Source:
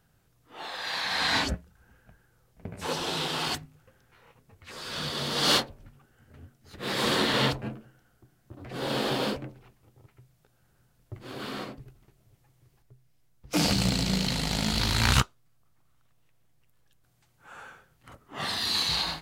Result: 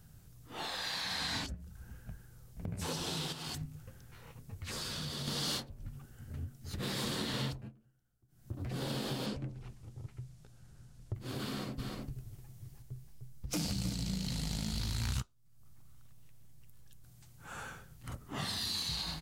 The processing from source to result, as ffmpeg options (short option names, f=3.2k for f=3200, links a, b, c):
-filter_complex "[0:a]asettb=1/sr,asplit=3[a][b][c];[a]atrim=end=1.464[d];[b]atrim=start=1.46:end=2.68,asetpts=PTS-STARTPTS,afade=t=in:d=0.004:c=qsin,afade=t=out:st=1.216:d=0.004:c=qsin,acompressor=threshold=-39dB:ratio=4:attack=3.2:release=140:knee=1:detection=peak[e];[c]atrim=start=2.676[f];[d][e]acrossfade=d=0.004:c1=hsin:c2=qsin[g];[g][f]acrossfade=d=0.004:c1=qsin:c2=hsin,asettb=1/sr,asplit=3[h][i][j];[h]atrim=end=3.324[k];[i]atrim=start=3.32:end=5.28,asetpts=PTS-STARTPTS,afade=t=in:d=0.004:c=qsin,afade=t=out:st=1.956:d=0.004:c=qsin,acompressor=threshold=-37dB:ratio=10:attack=3.2:release=140:knee=1:detection=peak[l];[j]atrim=start=5.276[m];[k][l]acrossfade=d=0.004:c1=hsin:c2=qsin[n];[n][m]acrossfade=d=0.004:c1=qsin:c2=hsin,asettb=1/sr,asplit=3[o][p][q];[o]atrim=end=9.264[r];[p]atrim=start=9.26:end=11.15,asetpts=PTS-STARTPTS,afade=t=in:d=0.004:c=qsin,afade=t=out:st=1.886:d=0.004:c=qsin,lowpass=8.6k[s];[q]atrim=start=11.146[t];[r][s]acrossfade=d=0.004:c1=hsin:c2=qsin[u];[u][t]acrossfade=d=0.004:c1=qsin:c2=hsin,asplit=3[v][w][x];[v]afade=t=out:st=11.78:d=0.02[y];[w]aecho=1:1:304:0.531,afade=t=in:st=11.78:d=0.02,afade=t=out:st=13.94:d=0.02[z];[x]afade=t=in:st=13.94:d=0.02[aa];[y][z][aa]amix=inputs=3:normalize=0,asplit=3[ab][ac][ad];[ab]atrim=end=7.72,asetpts=PTS-STARTPTS,afade=t=out:st=7.47:d=0.25:silence=0.0707946[ae];[ac]atrim=start=7.72:end=8.28,asetpts=PTS-STARTPTS,volume=-23dB[af];[ad]atrim=start=8.28,asetpts=PTS-STARTPTS,afade=t=in:d=0.25:silence=0.0707946[ag];[ae][af][ag]concat=n=3:v=0:a=1,bass=f=250:g=12,treble=f=4k:g=9,acompressor=threshold=-37dB:ratio=4"